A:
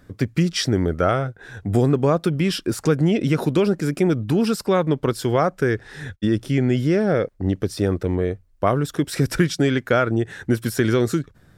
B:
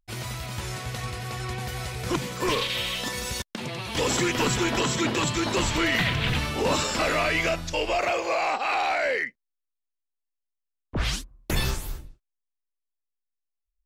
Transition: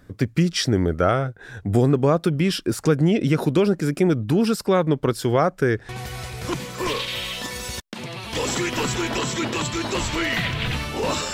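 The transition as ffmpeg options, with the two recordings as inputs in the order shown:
-filter_complex "[0:a]apad=whole_dur=11.33,atrim=end=11.33,atrim=end=5.892[a];[1:a]atrim=start=1.508:end=6.95[b];[a][b]acrossfade=d=0.004:c1=hsin:c2=hsin"

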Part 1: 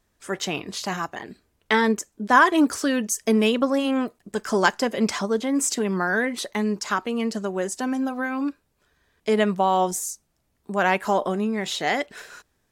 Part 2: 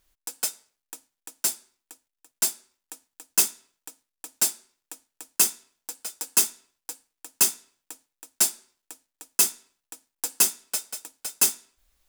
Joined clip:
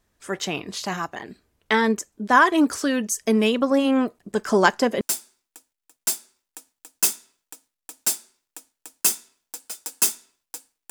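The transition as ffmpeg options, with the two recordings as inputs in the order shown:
-filter_complex "[0:a]asettb=1/sr,asplit=3[a][b][c];[a]atrim=end=3.714[d];[b]atrim=start=3.71:end=5.01,asetpts=PTS-STARTPTS,afade=t=in:d=0.004:c=qsin,afade=t=out:st=1.296:d=0.004:c=qsin,equalizer=f=360:w=0.31:g=3.5[e];[c]atrim=start=5.006[f];[d][e]acrossfade=d=0.004:c1=hsin:c2=qsin[g];[g][f]acrossfade=d=0.004:c1=qsin:c2=hsin,apad=whole_dur=10.9,atrim=end=10.9,atrim=end=5.012[h];[1:a]atrim=start=1.358:end=7.25[i];[h][i]acrossfade=d=0.004:c1=hsin:c2=hsin"

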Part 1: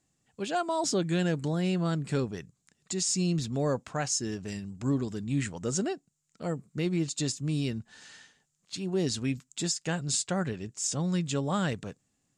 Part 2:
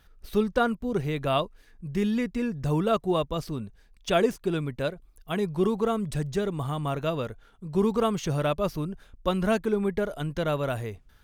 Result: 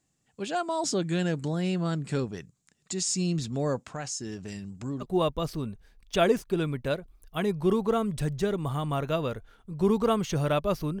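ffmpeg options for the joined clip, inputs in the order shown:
-filter_complex "[0:a]asettb=1/sr,asplit=3[a][b][c];[a]atrim=end=3.934[d];[b]atrim=start=3.93:end=5.06,asetpts=PTS-STARTPTS,afade=t=in:d=0.004:c=qsin,afade=t=out:st=1.126:d=0.004:c=qsin,acompressor=threshold=-34dB:ratio=2:attack=3.2:release=140:knee=1:detection=peak[e];[c]atrim=start=5.056[f];[d][e]acrossfade=d=0.004:c1=hsin:c2=qsin[g];[g][f]acrossfade=d=0.004:c1=qsin:c2=hsin,apad=whole_dur=11,atrim=end=11,atrim=end=5.06,asetpts=PTS-STARTPTS[h];[1:a]atrim=start=2.94:end=8.94,asetpts=PTS-STARTPTS[i];[h][i]acrossfade=d=0.06:c1=tri:c2=tri"

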